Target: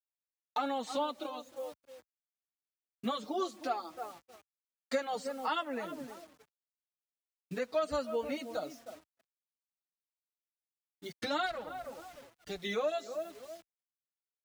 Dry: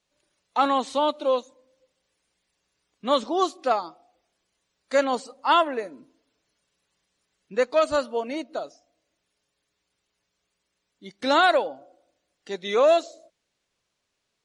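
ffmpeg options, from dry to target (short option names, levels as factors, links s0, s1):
-filter_complex "[0:a]asplit=3[s0][s1][s2];[s0]afade=t=out:st=11.45:d=0.02[s3];[s1]aeval=exprs='if(lt(val(0),0),0.251*val(0),val(0))':c=same,afade=t=in:st=11.45:d=0.02,afade=t=out:st=12.58:d=0.02[s4];[s2]afade=t=in:st=12.58:d=0.02[s5];[s3][s4][s5]amix=inputs=3:normalize=0,asplit=2[s6][s7];[s7]adelay=309,lowpass=f=1200:p=1,volume=0.178,asplit=2[s8][s9];[s9]adelay=309,lowpass=f=1200:p=1,volume=0.25,asplit=2[s10][s11];[s11]adelay=309,lowpass=f=1200:p=1,volume=0.25[s12];[s8][s10][s12]amix=inputs=3:normalize=0[s13];[s6][s13]amix=inputs=2:normalize=0,asubboost=boost=2:cutoff=210,bandreject=f=1000:w=8.5,acrusher=bits=8:mix=0:aa=0.000001,acompressor=threshold=0.0224:ratio=4,agate=range=0.0224:threshold=0.00447:ratio=3:detection=peak,highpass=58,asplit=2[s14][s15];[s15]adelay=5.6,afreqshift=-2.6[s16];[s14][s16]amix=inputs=2:normalize=1,volume=1.41"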